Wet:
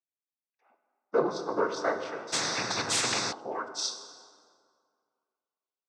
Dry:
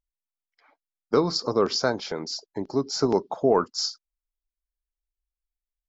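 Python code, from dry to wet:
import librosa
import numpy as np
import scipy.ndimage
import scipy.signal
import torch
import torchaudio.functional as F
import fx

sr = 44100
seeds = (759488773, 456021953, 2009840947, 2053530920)

y = fx.filter_sweep_bandpass(x, sr, from_hz=390.0, to_hz=3700.0, start_s=0.14, end_s=4.1, q=1.0)
y = fx.noise_vocoder(y, sr, seeds[0], bands=16)
y = fx.rev_plate(y, sr, seeds[1], rt60_s=2.1, hf_ratio=0.6, predelay_ms=0, drr_db=6.0)
y = fx.spectral_comp(y, sr, ratio=10.0, at=(2.32, 3.31), fade=0.02)
y = y * librosa.db_to_amplitude(-1.0)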